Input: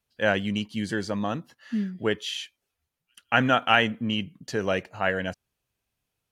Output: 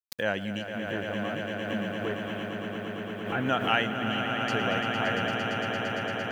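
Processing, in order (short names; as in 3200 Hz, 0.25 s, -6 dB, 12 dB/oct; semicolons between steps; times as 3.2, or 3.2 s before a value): 0.69–3.45 CVSD 16 kbps; HPF 62 Hz 6 dB/oct; requantised 10-bit, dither none; swelling echo 0.114 s, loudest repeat 8, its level -8.5 dB; backwards sustainer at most 71 dB/s; gain -6 dB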